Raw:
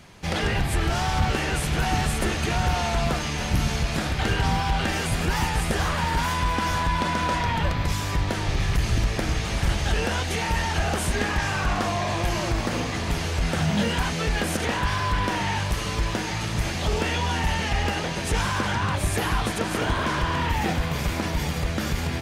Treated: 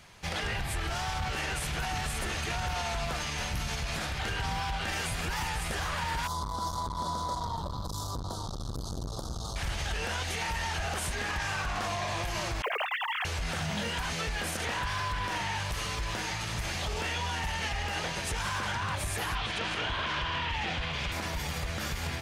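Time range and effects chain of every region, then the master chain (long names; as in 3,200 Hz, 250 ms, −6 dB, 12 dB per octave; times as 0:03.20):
0:06.27–0:09.56: Chebyshev band-stop filter 1,200–3,800 Hz, order 3 + saturating transformer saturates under 270 Hz
0:12.62–0:13.25: three sine waves on the formant tracks + high-pass filter 190 Hz + floating-point word with a short mantissa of 4 bits
0:19.35–0:21.12: low-pass filter 5,300 Hz + parametric band 3,000 Hz +7.5 dB 0.92 octaves
whole clip: parametric band 270 Hz −8 dB 2 octaves; brickwall limiter −20.5 dBFS; low-shelf EQ 170 Hz −3 dB; level −2.5 dB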